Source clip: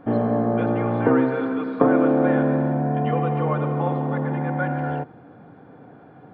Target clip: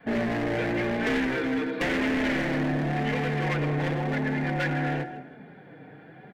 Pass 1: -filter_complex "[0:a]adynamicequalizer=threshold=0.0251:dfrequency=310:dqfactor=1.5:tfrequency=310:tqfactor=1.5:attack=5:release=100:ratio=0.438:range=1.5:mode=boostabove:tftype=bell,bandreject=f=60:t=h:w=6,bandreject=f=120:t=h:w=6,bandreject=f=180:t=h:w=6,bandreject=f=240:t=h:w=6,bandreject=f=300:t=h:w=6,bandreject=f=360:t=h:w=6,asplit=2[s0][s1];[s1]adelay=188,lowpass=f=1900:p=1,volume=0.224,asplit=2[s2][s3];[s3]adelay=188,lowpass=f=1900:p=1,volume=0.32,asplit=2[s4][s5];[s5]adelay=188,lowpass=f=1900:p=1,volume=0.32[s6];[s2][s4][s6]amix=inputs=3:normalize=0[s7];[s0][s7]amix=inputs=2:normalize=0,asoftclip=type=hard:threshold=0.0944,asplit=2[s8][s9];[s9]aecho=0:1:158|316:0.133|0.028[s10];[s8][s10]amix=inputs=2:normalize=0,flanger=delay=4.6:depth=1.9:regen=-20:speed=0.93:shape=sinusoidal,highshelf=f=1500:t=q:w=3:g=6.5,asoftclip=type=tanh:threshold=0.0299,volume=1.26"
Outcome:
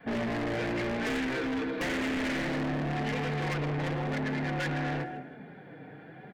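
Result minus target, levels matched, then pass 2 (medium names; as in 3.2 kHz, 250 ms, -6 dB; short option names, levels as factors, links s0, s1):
saturation: distortion +9 dB
-filter_complex "[0:a]adynamicequalizer=threshold=0.0251:dfrequency=310:dqfactor=1.5:tfrequency=310:tqfactor=1.5:attack=5:release=100:ratio=0.438:range=1.5:mode=boostabove:tftype=bell,bandreject=f=60:t=h:w=6,bandreject=f=120:t=h:w=6,bandreject=f=180:t=h:w=6,bandreject=f=240:t=h:w=6,bandreject=f=300:t=h:w=6,bandreject=f=360:t=h:w=6,asplit=2[s0][s1];[s1]adelay=188,lowpass=f=1900:p=1,volume=0.224,asplit=2[s2][s3];[s3]adelay=188,lowpass=f=1900:p=1,volume=0.32,asplit=2[s4][s5];[s5]adelay=188,lowpass=f=1900:p=1,volume=0.32[s6];[s2][s4][s6]amix=inputs=3:normalize=0[s7];[s0][s7]amix=inputs=2:normalize=0,asoftclip=type=hard:threshold=0.0944,asplit=2[s8][s9];[s9]aecho=0:1:158|316:0.133|0.028[s10];[s8][s10]amix=inputs=2:normalize=0,flanger=delay=4.6:depth=1.9:regen=-20:speed=0.93:shape=sinusoidal,highshelf=f=1500:t=q:w=3:g=6.5,asoftclip=type=tanh:threshold=0.0841,volume=1.26"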